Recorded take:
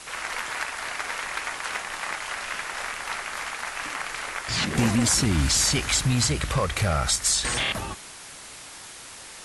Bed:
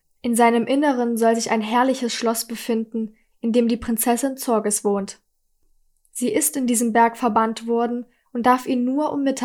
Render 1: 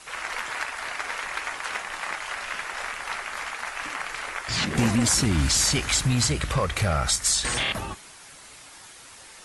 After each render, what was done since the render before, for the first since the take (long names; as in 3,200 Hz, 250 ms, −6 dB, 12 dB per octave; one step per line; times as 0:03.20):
broadband denoise 6 dB, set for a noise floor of −43 dBFS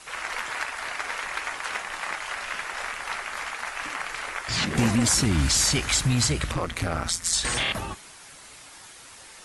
0:06.51–0:07.33: amplitude modulation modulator 170 Hz, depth 90%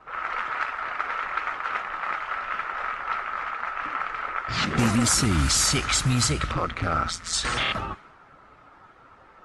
low-pass that shuts in the quiet parts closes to 990 Hz, open at −18 dBFS
parametric band 1,300 Hz +11.5 dB 0.23 octaves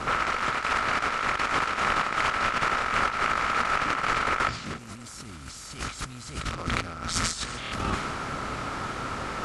compressor on every frequency bin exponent 0.6
compressor whose output falls as the input rises −28 dBFS, ratio −0.5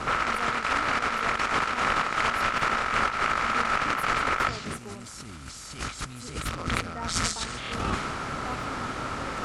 mix in bed −23.5 dB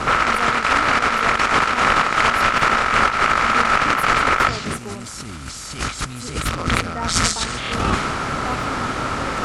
level +9 dB
brickwall limiter −2 dBFS, peak gain reduction 1.5 dB